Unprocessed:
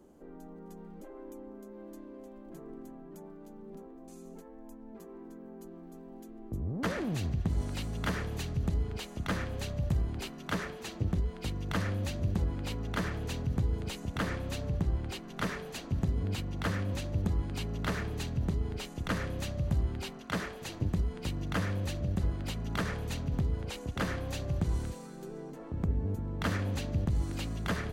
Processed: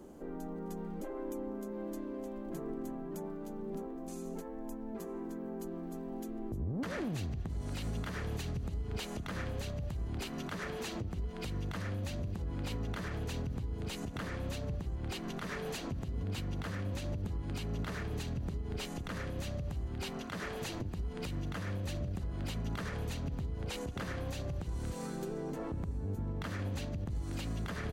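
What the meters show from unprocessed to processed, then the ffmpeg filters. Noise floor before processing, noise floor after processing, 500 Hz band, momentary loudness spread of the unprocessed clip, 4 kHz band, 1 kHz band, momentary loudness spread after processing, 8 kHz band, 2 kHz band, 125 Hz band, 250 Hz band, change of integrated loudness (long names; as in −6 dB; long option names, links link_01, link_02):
−49 dBFS, −43 dBFS, −1.0 dB, 16 LU, −3.5 dB, −4.0 dB, 4 LU, −2.5 dB, −5.0 dB, −5.0 dB, −2.5 dB, −5.0 dB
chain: -af "acompressor=threshold=-37dB:ratio=6,alimiter=level_in=12dB:limit=-24dB:level=0:latency=1:release=126,volume=-12dB,aecho=1:1:907:0.1,volume=6.5dB"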